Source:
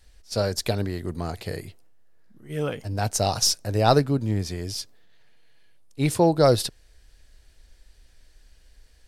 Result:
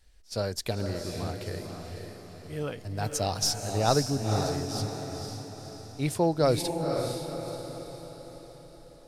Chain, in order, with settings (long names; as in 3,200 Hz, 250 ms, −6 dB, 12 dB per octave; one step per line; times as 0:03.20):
feedback delay with all-pass diffusion 510 ms, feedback 50%, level −5 dB
0:02.98–0:03.62: bit-depth reduction 10 bits, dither none
level −6 dB